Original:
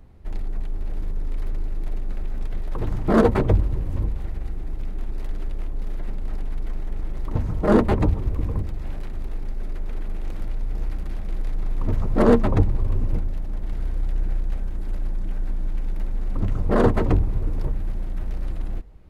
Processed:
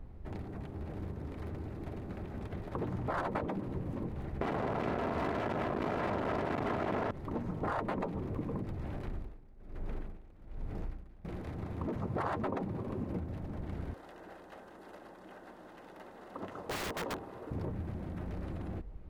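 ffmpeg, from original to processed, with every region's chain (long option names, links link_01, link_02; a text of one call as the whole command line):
ffmpeg -i in.wav -filter_complex "[0:a]asettb=1/sr,asplit=3[link_01][link_02][link_03];[link_01]atrim=end=4.414[link_04];[link_02]atrim=start=4.41:end=7.11,asetpts=PTS-STARTPTS,afade=type=in:duration=0.004:curve=qsin,afade=type=out:start_time=2.696:duration=0.004:curve=qsin,aecho=1:1:3:0.51,atrim=end_sample=119070,asplit=2[link_05][link_06];[link_06]highpass=frequency=720:poles=1,volume=45dB,asoftclip=type=tanh:threshold=-12.5dB[link_07];[link_05][link_07]amix=inputs=2:normalize=0,lowpass=frequency=1000:poles=1,volume=-6dB[link_08];[link_03]atrim=start=7.106[link_09];[link_04][link_08]acrossfade=duration=0.004:curve1=hsin:curve2=qsin[link_10];[link_10][link_09]acrossfade=duration=0.004:curve1=qsin:curve2=hsin,asettb=1/sr,asplit=3[link_11][link_12][link_13];[link_11]atrim=end=9.084[link_14];[link_12]atrim=start=9.08:end=11.25,asetpts=PTS-STARTPTS,afade=type=in:duration=0.004:curve=qsin,afade=type=out:start_time=2.166:duration=0.004:curve=qsin,highpass=42,aeval=exprs='val(0)*pow(10,-22*(0.5-0.5*cos(2*PI*1.2*n/s))/20)':channel_layout=same[link_15];[link_13]atrim=start=11.246[link_16];[link_14][link_15]acrossfade=duration=0.004:curve1=hsin:curve2=qsin[link_17];[link_17][link_16]acrossfade=duration=0.004:curve1=qsin:curve2=hsin,asettb=1/sr,asplit=3[link_18][link_19][link_20];[link_18]atrim=end=13.934[link_21];[link_19]atrim=start=13.93:end=17.52,asetpts=PTS-STARTPTS,afade=type=in:duration=0.004:curve=qsin,afade=type=out:start_time=3.586:duration=0.004:curve=qsin,highpass=530,bandreject=frequency=2300:width=7.9,aeval=exprs='(mod(21.1*val(0)+1,2)-1)/21.1':channel_layout=same[link_22];[link_20]atrim=start=17.516[link_23];[link_21][link_22]acrossfade=duration=0.004:curve1=hsin:curve2=qsin[link_24];[link_24][link_23]acrossfade=duration=0.004:curve1=qsin:curve2=hsin,afftfilt=real='re*lt(hypot(re,im),0.398)':imag='im*lt(hypot(re,im),0.398)':win_size=1024:overlap=0.75,highshelf=frequency=2700:gain=-11.5,acompressor=threshold=-34dB:ratio=2.5" out.wav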